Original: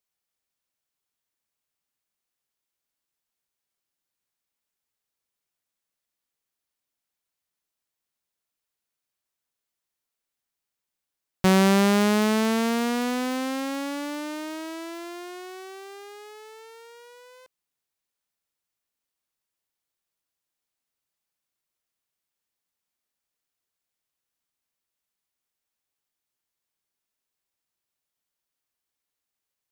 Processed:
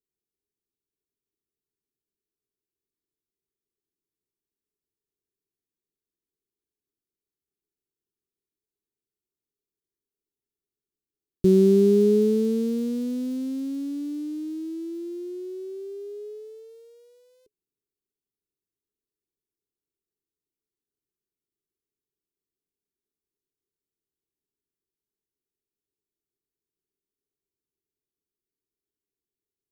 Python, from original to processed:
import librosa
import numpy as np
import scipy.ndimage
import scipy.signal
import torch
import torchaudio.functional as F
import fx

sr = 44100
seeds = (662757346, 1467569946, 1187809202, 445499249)

y = fx.curve_eq(x, sr, hz=(240.0, 420.0, 630.0, 1900.0, 3800.0, 8800.0, 12000.0), db=(0, 9, -30, -26, -14, -12, -10))